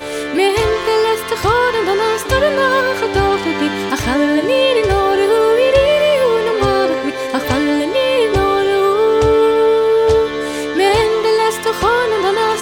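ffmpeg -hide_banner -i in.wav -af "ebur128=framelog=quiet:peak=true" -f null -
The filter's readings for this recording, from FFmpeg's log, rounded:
Integrated loudness:
  I:         -14.2 LUFS
  Threshold: -24.1 LUFS
Loudness range:
  LRA:         1.6 LU
  Threshold: -34.0 LUFS
  LRA low:   -14.9 LUFS
  LRA high:  -13.3 LUFS
True peak:
  Peak:       -1.4 dBFS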